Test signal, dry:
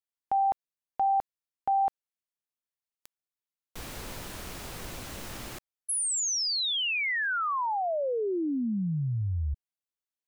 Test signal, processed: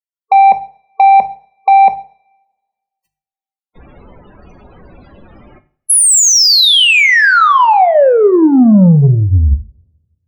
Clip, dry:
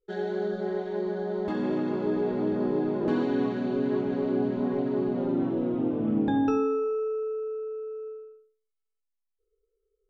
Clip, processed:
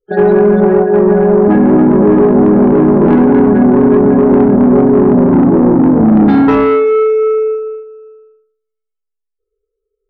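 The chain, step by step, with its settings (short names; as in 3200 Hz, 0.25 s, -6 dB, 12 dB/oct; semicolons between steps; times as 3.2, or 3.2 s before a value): gate -33 dBFS, range -21 dB; notches 50/100/150 Hz; dynamic EQ 180 Hz, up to +7 dB, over -42 dBFS, Q 1.3; in parallel at -2 dB: compressor, threshold -36 dBFS; on the sum: loudest bins only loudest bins 32; soft clip -22.5 dBFS; two-slope reverb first 0.46 s, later 1.6 s, from -27 dB, DRR 8.5 dB; maximiser +20.5 dB; gain -1 dB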